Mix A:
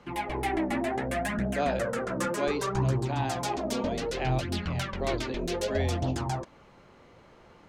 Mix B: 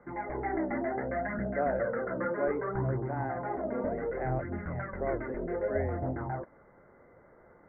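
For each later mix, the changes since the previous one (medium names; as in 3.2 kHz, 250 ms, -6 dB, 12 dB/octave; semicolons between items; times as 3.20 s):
master: add rippled Chebyshev low-pass 2.1 kHz, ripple 6 dB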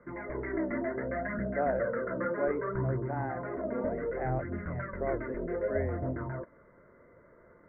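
background: add Butterworth band-stop 790 Hz, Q 3.9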